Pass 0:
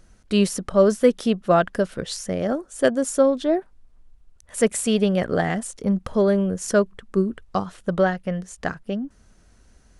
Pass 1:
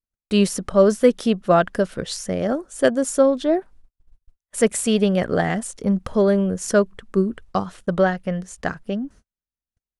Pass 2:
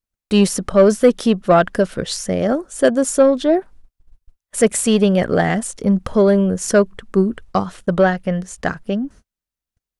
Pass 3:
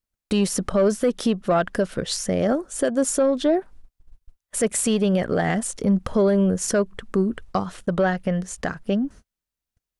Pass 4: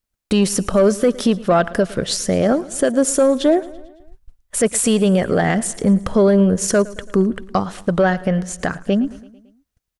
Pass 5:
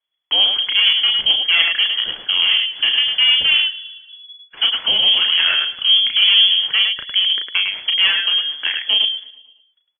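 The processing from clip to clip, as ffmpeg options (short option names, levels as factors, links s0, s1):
-af "agate=range=0.00562:threshold=0.00562:ratio=16:detection=peak,volume=1.19"
-af "acontrast=45,volume=0.891"
-af "alimiter=limit=0.251:level=0:latency=1:release=228"
-af "aecho=1:1:111|222|333|444|555:0.1|0.058|0.0336|0.0195|0.0113,volume=1.78"
-af "aecho=1:1:34.99|105:0.562|0.562,aeval=exprs='clip(val(0),-1,0.158)':c=same,lowpass=f=2900:t=q:w=0.5098,lowpass=f=2900:t=q:w=0.6013,lowpass=f=2900:t=q:w=0.9,lowpass=f=2900:t=q:w=2.563,afreqshift=-3400"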